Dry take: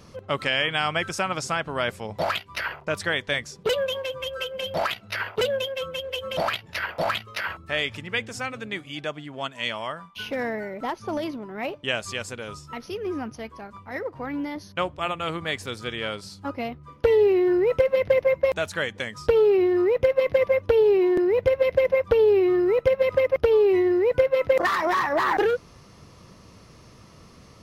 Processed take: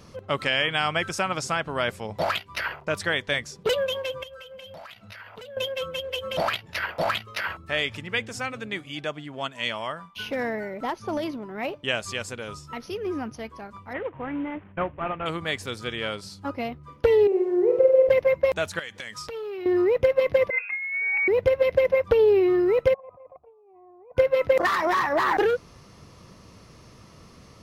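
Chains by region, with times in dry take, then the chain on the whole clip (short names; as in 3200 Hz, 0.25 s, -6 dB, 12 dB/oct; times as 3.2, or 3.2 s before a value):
4.23–5.57 bell 370 Hz -13.5 dB 0.26 oct + compressor 8:1, threshold -40 dBFS
13.93–15.26 CVSD 16 kbps + LPF 2500 Hz + mismatched tape noise reduction decoder only
17.27–18.09 delta modulation 64 kbps, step -34 dBFS + band-pass 510 Hz, Q 1.9 + flutter echo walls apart 8.2 m, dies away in 0.69 s
18.79–19.66 tilt shelf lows -6 dB, about 860 Hz + compressor 12:1, threshold -30 dBFS + core saturation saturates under 1300 Hz
20.5–21.28 negative-ratio compressor -24 dBFS, ratio -0.5 + inverted band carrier 2600 Hz + HPF 600 Hz
22.94–24.17 dynamic EQ 910 Hz, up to -7 dB, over -36 dBFS, Q 1 + negative-ratio compressor -26 dBFS, ratio -0.5 + vocal tract filter a
whole clip: dry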